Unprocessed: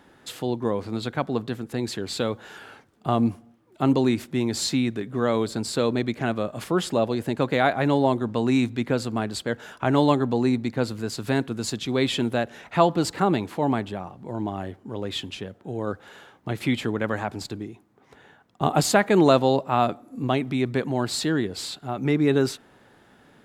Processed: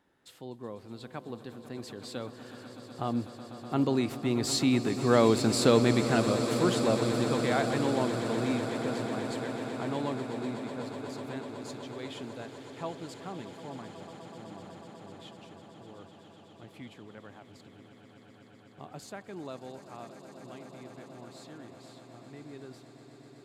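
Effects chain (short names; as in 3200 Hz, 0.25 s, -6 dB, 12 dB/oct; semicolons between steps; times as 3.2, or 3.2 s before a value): Doppler pass-by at 5.46, 8 m/s, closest 5.4 m; swelling echo 0.124 s, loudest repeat 8, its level -15 dB; gain +1.5 dB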